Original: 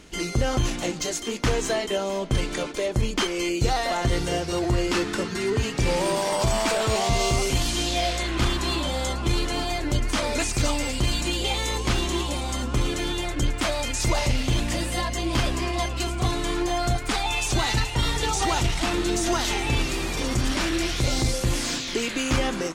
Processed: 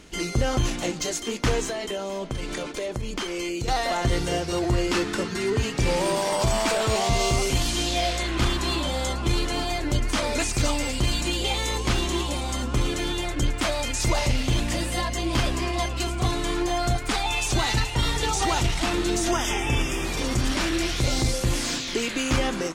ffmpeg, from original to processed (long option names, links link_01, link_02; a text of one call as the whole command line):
ffmpeg -i in.wav -filter_complex "[0:a]asettb=1/sr,asplit=3[link_01][link_02][link_03];[link_01]atrim=end=1.634[link_04];[link_02]atrim=start=1.63:end=3.68,asetpts=PTS-STARTPTS,afade=type=in:duration=0.004:curve=qsin,afade=type=out:start_time=2.046:duration=0.004:curve=qsin,acompressor=threshold=-26dB:ratio=4:attack=3.2:release=140:knee=1:detection=peak[link_05];[link_03]atrim=start=3.676[link_06];[link_04][link_05]acrossfade=duration=0.004:curve1=hsin:curve2=qsin[link_07];[link_07][link_06]acrossfade=duration=0.004:curve1=qsin:curve2=hsin,asettb=1/sr,asplit=3[link_08][link_09][link_10];[link_08]atrim=end=19.314[link_11];[link_09]atrim=start=19.31:end=20.05,asetpts=PTS-STARTPTS,afade=type=in:duration=0.004:curve=qsin,afade=type=out:start_time=0.736:duration=0.004:curve=qsin,asuperstop=centerf=4200:order=8:qfactor=3.5[link_12];[link_10]atrim=start=20.046[link_13];[link_11][link_12]acrossfade=duration=0.004:curve1=hsin:curve2=qsin[link_14];[link_14][link_13]acrossfade=duration=0.004:curve1=qsin:curve2=hsin" out.wav